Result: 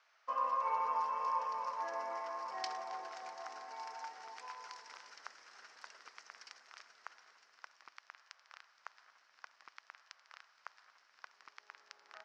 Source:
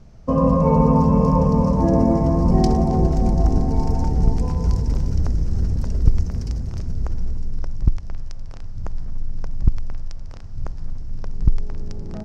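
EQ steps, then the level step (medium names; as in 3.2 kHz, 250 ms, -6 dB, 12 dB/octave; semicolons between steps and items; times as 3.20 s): ladder high-pass 1.1 kHz, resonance 30%; low-pass 4 kHz 12 dB/octave; +2.5 dB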